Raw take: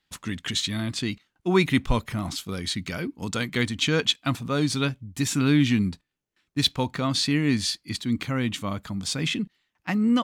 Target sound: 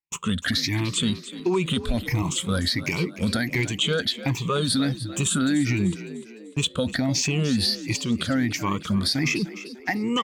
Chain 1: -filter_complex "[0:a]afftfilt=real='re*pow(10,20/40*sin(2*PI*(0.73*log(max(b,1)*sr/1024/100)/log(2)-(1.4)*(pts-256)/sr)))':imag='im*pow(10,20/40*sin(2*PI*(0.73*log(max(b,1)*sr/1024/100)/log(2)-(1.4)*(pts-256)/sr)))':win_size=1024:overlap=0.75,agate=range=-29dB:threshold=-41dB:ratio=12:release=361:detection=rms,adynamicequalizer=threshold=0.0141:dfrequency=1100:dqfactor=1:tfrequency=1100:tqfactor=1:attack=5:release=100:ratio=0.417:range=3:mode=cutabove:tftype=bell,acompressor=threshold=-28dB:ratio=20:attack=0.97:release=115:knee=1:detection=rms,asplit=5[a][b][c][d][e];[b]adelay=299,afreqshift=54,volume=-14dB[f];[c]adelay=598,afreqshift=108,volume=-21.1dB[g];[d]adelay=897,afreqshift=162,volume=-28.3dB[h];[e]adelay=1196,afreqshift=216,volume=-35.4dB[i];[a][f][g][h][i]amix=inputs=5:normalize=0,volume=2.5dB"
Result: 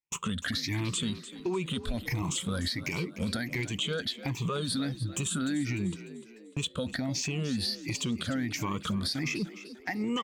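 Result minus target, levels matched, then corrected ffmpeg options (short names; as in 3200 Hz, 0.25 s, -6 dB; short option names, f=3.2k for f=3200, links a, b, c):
compressor: peak gain reduction +8.5 dB
-filter_complex "[0:a]afftfilt=real='re*pow(10,20/40*sin(2*PI*(0.73*log(max(b,1)*sr/1024/100)/log(2)-(1.4)*(pts-256)/sr)))':imag='im*pow(10,20/40*sin(2*PI*(0.73*log(max(b,1)*sr/1024/100)/log(2)-(1.4)*(pts-256)/sr)))':win_size=1024:overlap=0.75,agate=range=-29dB:threshold=-41dB:ratio=12:release=361:detection=rms,adynamicequalizer=threshold=0.0141:dfrequency=1100:dqfactor=1:tfrequency=1100:tqfactor=1:attack=5:release=100:ratio=0.417:range=3:mode=cutabove:tftype=bell,acompressor=threshold=-19dB:ratio=20:attack=0.97:release=115:knee=1:detection=rms,asplit=5[a][b][c][d][e];[b]adelay=299,afreqshift=54,volume=-14dB[f];[c]adelay=598,afreqshift=108,volume=-21.1dB[g];[d]adelay=897,afreqshift=162,volume=-28.3dB[h];[e]adelay=1196,afreqshift=216,volume=-35.4dB[i];[a][f][g][h][i]amix=inputs=5:normalize=0,volume=2.5dB"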